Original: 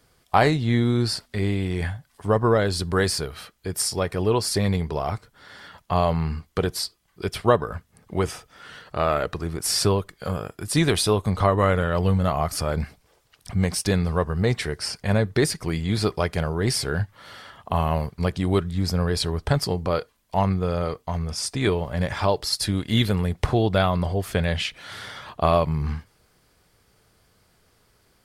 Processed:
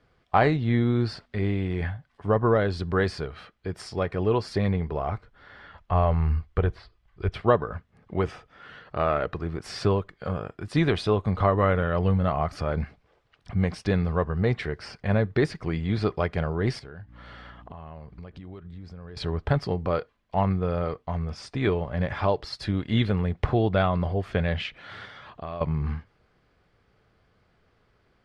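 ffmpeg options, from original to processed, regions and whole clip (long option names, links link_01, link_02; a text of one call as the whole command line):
ffmpeg -i in.wav -filter_complex "[0:a]asettb=1/sr,asplit=3[link_01][link_02][link_03];[link_01]atrim=end=4.684[link_04];[link_02]atrim=start=4.68:end=7.34,asetpts=PTS-STARTPTS,afade=type=in:duration=0.004:curve=qsin,afade=type=out:start_time=2.656:duration=0.004:curve=qsin,acrossover=split=3000[link_05][link_06];[link_06]acompressor=threshold=-52dB:ratio=4:attack=1:release=60[link_07];[link_05][link_07]amix=inputs=2:normalize=0,asubboost=boost=10.5:cutoff=76[link_08];[link_03]atrim=start=7.336[link_09];[link_04][link_08]acrossfade=duration=0.004:curve1=hsin:curve2=qsin[link_10];[link_10][link_09]acrossfade=duration=0.004:curve1=qsin:curve2=hsin,asettb=1/sr,asplit=3[link_11][link_12][link_13];[link_11]atrim=end=16.794[link_14];[link_12]atrim=start=16.79:end=19.17,asetpts=PTS-STARTPTS,afade=type=in:duration=0.004:curve=qsin,afade=type=out:start_time=2.376:duration=0.004:curve=qsin,aeval=exprs='val(0)+0.00562*(sin(2*PI*60*n/s)+sin(2*PI*2*60*n/s)/2+sin(2*PI*3*60*n/s)/3+sin(2*PI*4*60*n/s)/4+sin(2*PI*5*60*n/s)/5)':channel_layout=same,acompressor=threshold=-36dB:ratio=10:attack=3.2:release=140:knee=1:detection=peak[link_15];[link_13]atrim=start=19.166[link_16];[link_14][link_15]acrossfade=duration=0.004:curve1=hsin:curve2=qsin[link_17];[link_17][link_16]acrossfade=duration=0.004:curve1=qsin:curve2=hsin,asettb=1/sr,asplit=3[link_18][link_19][link_20];[link_18]atrim=end=25.054[link_21];[link_19]atrim=start=25.05:end=25.61,asetpts=PTS-STARTPTS,afade=type=in:duration=0.004:curve=qsin,afade=type=out:start_time=0.556:duration=0.004:curve=qsin,lowpass=11000,highshelf=frequency=3700:gain=6.5,acompressor=threshold=-41dB:ratio=2:attack=3.2:release=140:knee=1:detection=peak[link_22];[link_20]atrim=start=25.606[link_23];[link_21][link_22]acrossfade=duration=0.004:curve1=hsin:curve2=qsin[link_24];[link_24][link_23]acrossfade=duration=0.004:curve1=qsin:curve2=hsin,lowpass=2700,bandreject=frequency=930:width=19,volume=-2dB" out.wav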